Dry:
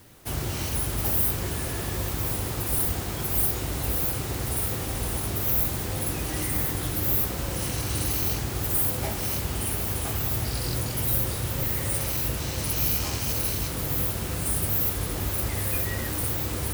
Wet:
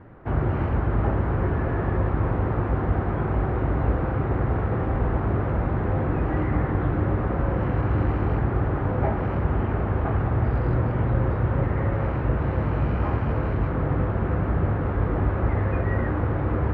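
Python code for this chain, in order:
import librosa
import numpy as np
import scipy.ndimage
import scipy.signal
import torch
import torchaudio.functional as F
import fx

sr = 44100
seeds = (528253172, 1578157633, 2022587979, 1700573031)

y = scipy.signal.sosfilt(scipy.signal.butter(4, 1600.0, 'lowpass', fs=sr, output='sos'), x)
y = y * librosa.db_to_amplitude(7.5)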